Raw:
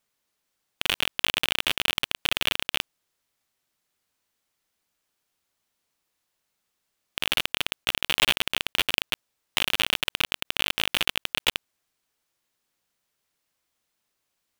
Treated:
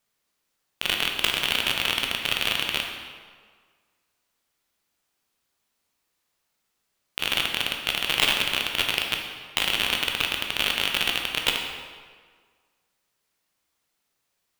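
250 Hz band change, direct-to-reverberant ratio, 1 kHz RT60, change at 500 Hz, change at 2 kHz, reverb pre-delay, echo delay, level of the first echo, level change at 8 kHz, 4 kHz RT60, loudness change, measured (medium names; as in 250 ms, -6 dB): +2.5 dB, 1.5 dB, 1.7 s, +2.0 dB, +2.0 dB, 12 ms, no echo, no echo, +1.5 dB, 1.2 s, +2.0 dB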